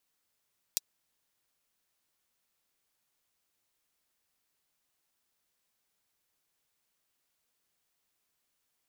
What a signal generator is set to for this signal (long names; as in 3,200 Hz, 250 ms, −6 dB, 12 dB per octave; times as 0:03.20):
closed synth hi-hat, high-pass 4,500 Hz, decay 0.03 s